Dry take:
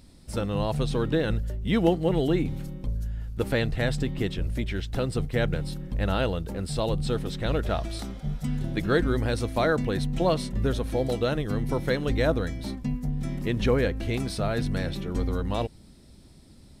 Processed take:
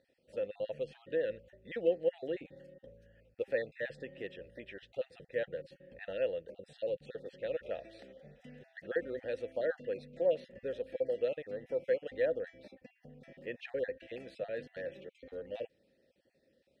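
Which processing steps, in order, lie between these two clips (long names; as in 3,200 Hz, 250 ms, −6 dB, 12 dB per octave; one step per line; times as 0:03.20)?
time-frequency cells dropped at random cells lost 26%
formant filter e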